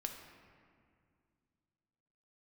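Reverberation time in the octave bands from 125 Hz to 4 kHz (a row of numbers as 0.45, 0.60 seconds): 3.1, 3.0, 2.3, 2.1, 1.9, 1.3 seconds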